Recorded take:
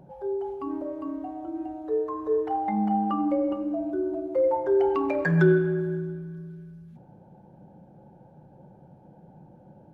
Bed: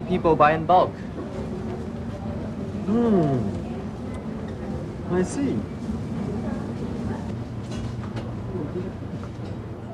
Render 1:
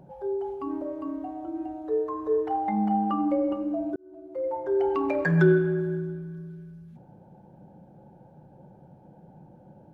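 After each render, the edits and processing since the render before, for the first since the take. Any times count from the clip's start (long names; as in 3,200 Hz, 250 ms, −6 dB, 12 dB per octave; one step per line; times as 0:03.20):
0:03.96–0:05.09: fade in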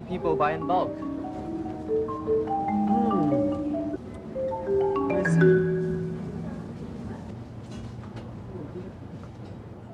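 mix in bed −8 dB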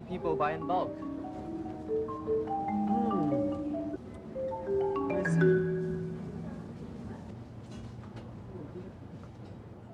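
level −6 dB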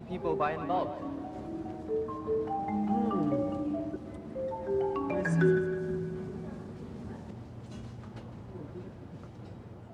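echo with a time of its own for lows and highs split 550 Hz, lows 231 ms, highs 158 ms, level −13 dB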